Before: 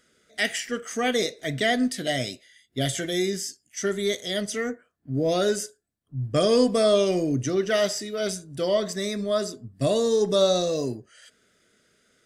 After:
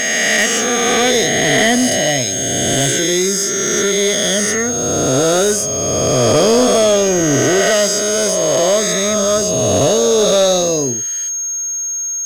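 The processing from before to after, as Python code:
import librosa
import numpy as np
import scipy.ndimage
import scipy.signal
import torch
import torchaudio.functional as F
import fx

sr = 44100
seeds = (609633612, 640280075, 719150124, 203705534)

y = fx.spec_swells(x, sr, rise_s=2.68)
y = y + 10.0 ** (-26.0 / 20.0) * np.sin(2.0 * np.pi * 6500.0 * np.arange(len(y)) / sr)
y = fx.leveller(y, sr, passes=2)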